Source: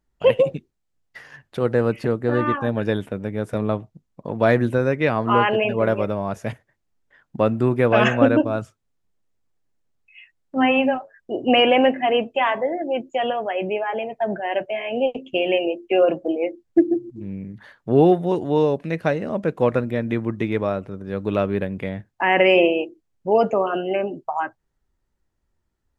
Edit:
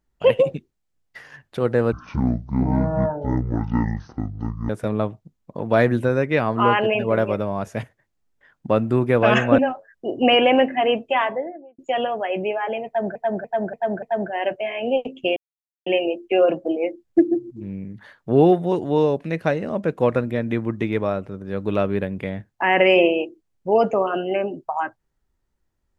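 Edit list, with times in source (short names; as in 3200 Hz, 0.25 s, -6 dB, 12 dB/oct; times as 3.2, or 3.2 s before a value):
1.92–3.39 speed 53%
8.28–10.84 cut
12.42–13.04 studio fade out
14.12–14.41 loop, 5 plays
15.46 insert silence 0.50 s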